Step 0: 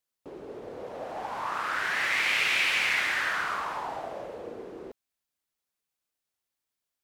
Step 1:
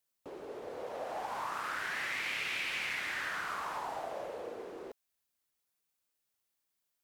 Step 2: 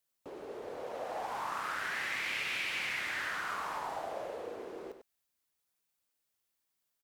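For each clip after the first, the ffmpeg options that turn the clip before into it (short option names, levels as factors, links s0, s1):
-filter_complex "[0:a]highshelf=f=9000:g=5,acrossover=split=410|5400[s0][s1][s2];[s0]acompressor=threshold=0.00178:ratio=4[s3];[s1]acompressor=threshold=0.0158:ratio=4[s4];[s2]acompressor=threshold=0.00178:ratio=4[s5];[s3][s4][s5]amix=inputs=3:normalize=0"
-af "aecho=1:1:98:0.355"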